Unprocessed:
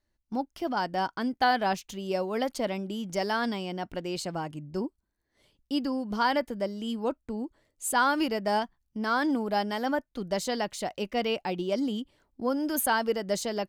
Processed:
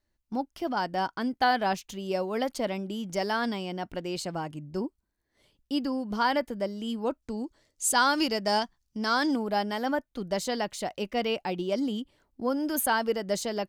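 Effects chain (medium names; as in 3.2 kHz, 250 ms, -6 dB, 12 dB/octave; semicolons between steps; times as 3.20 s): 7.22–9.36 s: peaking EQ 5.6 kHz +10.5 dB 1.3 oct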